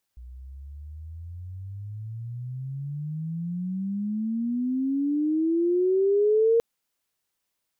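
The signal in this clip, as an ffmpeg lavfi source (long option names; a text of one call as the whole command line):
ffmpeg -f lavfi -i "aevalsrc='pow(10,(-16.5+23*(t/6.43-1))/20)*sin(2*PI*60*6.43/(35.5*log(2)/12)*(exp(35.5*log(2)/12*t/6.43)-1))':duration=6.43:sample_rate=44100" out.wav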